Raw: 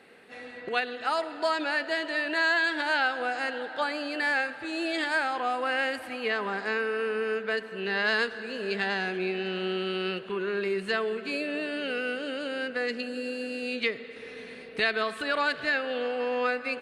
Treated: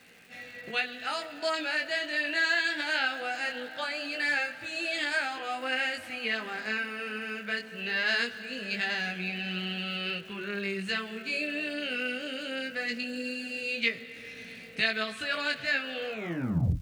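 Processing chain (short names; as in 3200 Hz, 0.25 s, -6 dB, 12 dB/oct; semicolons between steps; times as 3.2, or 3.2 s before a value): tape stop at the end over 0.74 s; HPF 55 Hz; bell 170 Hz +4 dB 0.33 oct; chorus 0.21 Hz, delay 17 ms, depth 6.9 ms; fifteen-band EQ 100 Hz +7 dB, 400 Hz -9 dB, 1000 Hz -9 dB, 2500 Hz +5 dB, 6300 Hz +7 dB; crackle 520/s -50 dBFS; gain +1.5 dB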